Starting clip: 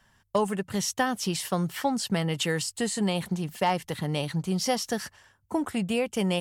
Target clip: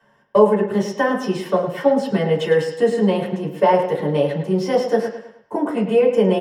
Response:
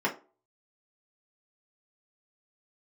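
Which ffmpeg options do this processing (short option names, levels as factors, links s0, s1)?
-filter_complex "[0:a]equalizer=f=520:w=2.1:g=12.5,acrossover=split=120|6100[s0][s1][s2];[s1]aecho=1:1:105|210|315|420:0.355|0.138|0.054|0.021[s3];[s2]asoftclip=type=tanh:threshold=0.0126[s4];[s0][s3][s4]amix=inputs=3:normalize=0[s5];[1:a]atrim=start_sample=2205[s6];[s5][s6]afir=irnorm=-1:irlink=0,volume=0.473"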